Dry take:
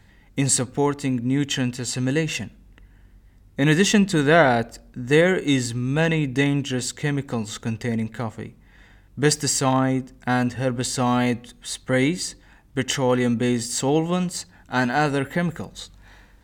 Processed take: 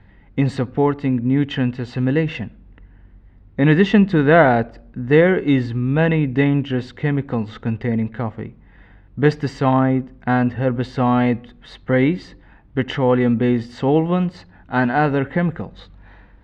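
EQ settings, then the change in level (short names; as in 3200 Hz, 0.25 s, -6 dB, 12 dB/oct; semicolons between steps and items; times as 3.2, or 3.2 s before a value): LPF 3900 Hz 6 dB/oct; air absorption 340 m; +5.0 dB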